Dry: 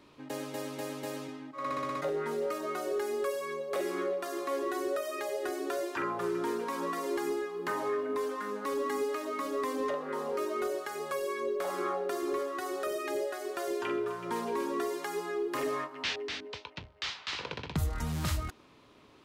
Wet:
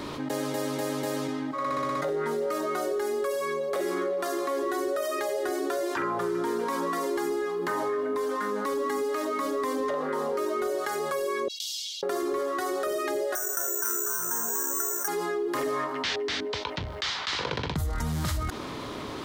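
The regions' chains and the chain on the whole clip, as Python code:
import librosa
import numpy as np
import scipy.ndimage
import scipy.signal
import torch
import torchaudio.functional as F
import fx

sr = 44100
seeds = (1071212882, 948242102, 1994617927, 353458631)

y = fx.chain(x, sr, fx.steep_highpass(hz=2900.0, slope=72),
    fx.high_shelf_res(hz=7400.0, db=-9.5, q=1.5), at=(11.48, 12.03))
y = fx.chain(y, sr, fx.ladder_lowpass(hz=1600.0, resonance_pct=80),
    fx.mod_noise(seeds[0], snr_db=22),
    fx.resample_bad(factor=6, down='filtered', up='zero_stuff'), at=(13.35, 15.08))
y = fx.peak_eq(y, sr, hz=2600.0, db=-6.5, octaves=0.31)
y = fx.env_flatten(y, sr, amount_pct=70)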